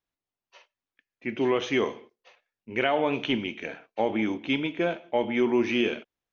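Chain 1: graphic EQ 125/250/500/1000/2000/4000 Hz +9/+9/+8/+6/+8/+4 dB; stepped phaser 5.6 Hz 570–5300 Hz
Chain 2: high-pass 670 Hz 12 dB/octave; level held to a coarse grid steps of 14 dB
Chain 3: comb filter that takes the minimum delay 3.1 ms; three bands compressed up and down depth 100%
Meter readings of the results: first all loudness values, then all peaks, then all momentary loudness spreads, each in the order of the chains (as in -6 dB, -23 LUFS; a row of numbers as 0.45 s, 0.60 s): -20.0 LUFS, -37.5 LUFS, -28.5 LUFS; -4.5 dBFS, -16.5 dBFS, -11.5 dBFS; 11 LU, 13 LU, 16 LU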